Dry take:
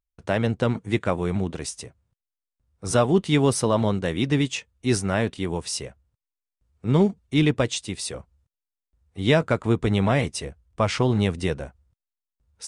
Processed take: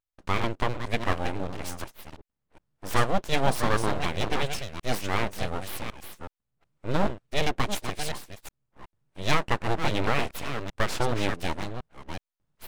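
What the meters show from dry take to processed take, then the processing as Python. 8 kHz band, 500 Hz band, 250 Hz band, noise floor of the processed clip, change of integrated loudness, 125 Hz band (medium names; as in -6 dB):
-6.5 dB, -6.5 dB, -9.5 dB, under -85 dBFS, -5.5 dB, -8.0 dB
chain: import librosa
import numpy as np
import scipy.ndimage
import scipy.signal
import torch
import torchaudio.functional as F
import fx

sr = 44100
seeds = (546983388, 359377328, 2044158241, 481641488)

y = fx.reverse_delay(x, sr, ms=369, wet_db=-7)
y = fx.bass_treble(y, sr, bass_db=-7, treble_db=-5)
y = np.abs(y)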